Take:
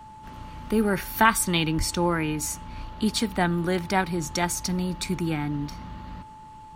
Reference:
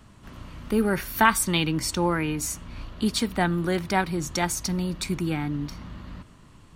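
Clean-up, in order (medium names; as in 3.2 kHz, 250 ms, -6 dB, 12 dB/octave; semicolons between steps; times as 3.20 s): band-stop 870 Hz, Q 30; 1.77–1.89 s: high-pass 140 Hz 24 dB/octave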